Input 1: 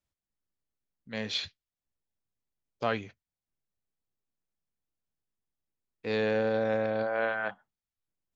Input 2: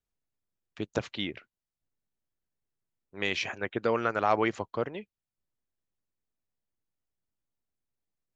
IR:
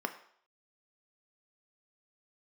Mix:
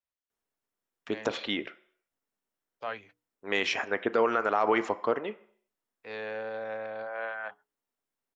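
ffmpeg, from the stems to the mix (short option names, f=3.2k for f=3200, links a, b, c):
-filter_complex "[0:a]acrossover=split=510 3200:gain=0.2 1 0.251[a][b][c];[a][b][c]amix=inputs=3:normalize=0,bandreject=f=60:t=h:w=6,bandreject=f=120:t=h:w=6,bandreject=f=180:t=h:w=6,bandreject=f=240:t=h:w=6,bandreject=f=300:t=h:w=6,bandreject=f=360:t=h:w=6,bandreject=f=420:t=h:w=6,bandreject=f=480:t=h:w=6,volume=-4dB[d];[1:a]lowshelf=f=180:g=-8.5,adelay=300,volume=-0.5dB,asplit=2[e][f];[f]volume=-4dB[g];[2:a]atrim=start_sample=2205[h];[g][h]afir=irnorm=-1:irlink=0[i];[d][e][i]amix=inputs=3:normalize=0,alimiter=limit=-14dB:level=0:latency=1:release=61"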